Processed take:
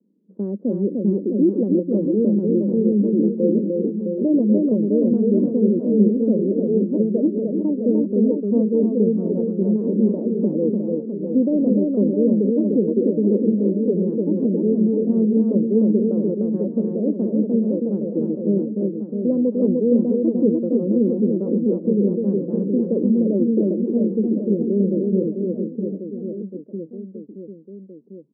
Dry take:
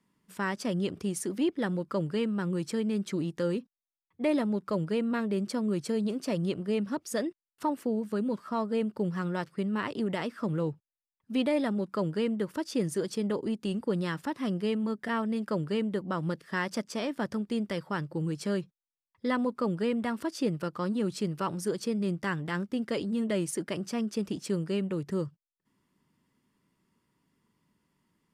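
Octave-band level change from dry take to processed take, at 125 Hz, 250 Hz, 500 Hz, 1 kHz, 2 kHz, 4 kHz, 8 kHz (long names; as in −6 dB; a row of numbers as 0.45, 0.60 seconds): +9.0 dB, +13.5 dB, +12.0 dB, below −10 dB, below −35 dB, below −40 dB, below −35 dB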